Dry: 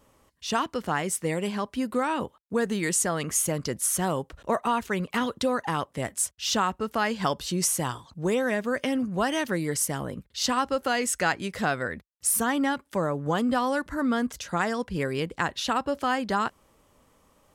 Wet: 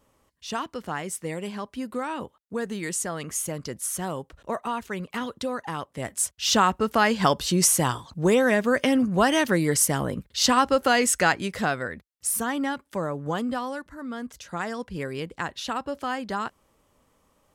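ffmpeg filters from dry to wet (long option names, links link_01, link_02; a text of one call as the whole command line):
ffmpeg -i in.wav -af "volume=13dB,afade=type=in:start_time=5.9:duration=0.74:silence=0.334965,afade=type=out:start_time=11:duration=0.95:silence=0.421697,afade=type=out:start_time=13.34:duration=0.63:silence=0.354813,afade=type=in:start_time=13.97:duration=0.77:silence=0.421697" out.wav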